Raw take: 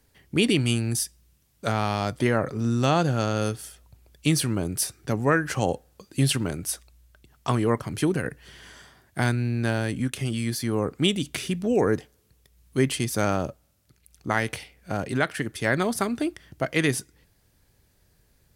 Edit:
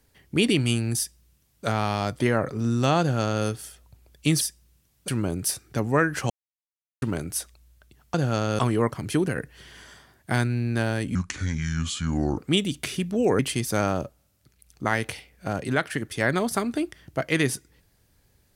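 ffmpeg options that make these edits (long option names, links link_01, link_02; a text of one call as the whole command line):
ffmpeg -i in.wav -filter_complex "[0:a]asplit=10[link_01][link_02][link_03][link_04][link_05][link_06][link_07][link_08][link_09][link_10];[link_01]atrim=end=4.412[link_11];[link_02]atrim=start=0.978:end=1.652[link_12];[link_03]atrim=start=4.408:end=5.63,asetpts=PTS-STARTPTS,afade=type=out:start_time=1.218:duration=0.004:curve=hsin[link_13];[link_04]atrim=start=5.63:end=6.35,asetpts=PTS-STARTPTS,volume=0[link_14];[link_05]atrim=start=6.35:end=7.472,asetpts=PTS-STARTPTS,afade=type=in:duration=0.004:curve=hsin[link_15];[link_06]atrim=start=2.998:end=3.452[link_16];[link_07]atrim=start=7.468:end=10.034[link_17];[link_08]atrim=start=10.03:end=10.89,asetpts=PTS-STARTPTS,asetrate=30870,aresample=44100[link_18];[link_09]atrim=start=10.886:end=11.902[link_19];[link_10]atrim=start=12.828[link_20];[link_11][link_12]acrossfade=duration=0.004:curve1=hsin:curve2=hsin[link_21];[link_13][link_14][link_15]concat=n=3:v=0:a=1[link_22];[link_21][link_22]acrossfade=duration=0.004:curve1=hsin:curve2=hsin[link_23];[link_23][link_16]acrossfade=duration=0.004:curve1=hsin:curve2=hsin[link_24];[link_24][link_17]acrossfade=duration=0.004:curve1=hsin:curve2=hsin[link_25];[link_25][link_18]acrossfade=duration=0.004:curve1=hsin:curve2=hsin[link_26];[link_26][link_19]acrossfade=duration=0.004:curve1=hsin:curve2=hsin[link_27];[link_27][link_20]acrossfade=duration=0.004:curve1=hsin:curve2=hsin" out.wav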